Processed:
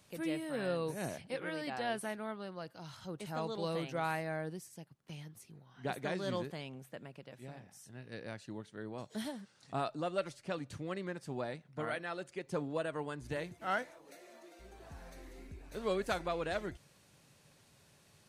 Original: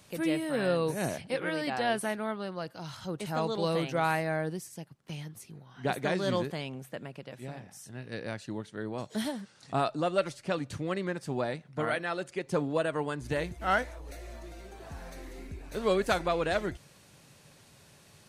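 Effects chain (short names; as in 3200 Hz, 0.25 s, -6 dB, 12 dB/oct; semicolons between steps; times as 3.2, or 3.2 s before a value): 13.36–14.59 HPF 90 Hz -> 290 Hz 24 dB/oct; gain -7.5 dB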